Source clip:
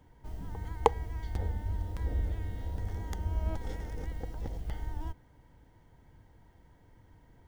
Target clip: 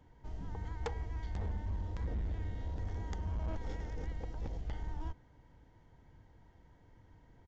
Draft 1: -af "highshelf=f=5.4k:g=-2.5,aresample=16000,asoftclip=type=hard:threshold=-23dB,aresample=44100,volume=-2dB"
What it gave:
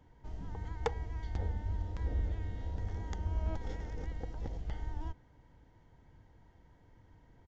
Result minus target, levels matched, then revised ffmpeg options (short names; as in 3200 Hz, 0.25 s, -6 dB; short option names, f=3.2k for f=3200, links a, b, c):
hard clip: distortion -4 dB
-af "highshelf=f=5.4k:g=-2.5,aresample=16000,asoftclip=type=hard:threshold=-30.5dB,aresample=44100,volume=-2dB"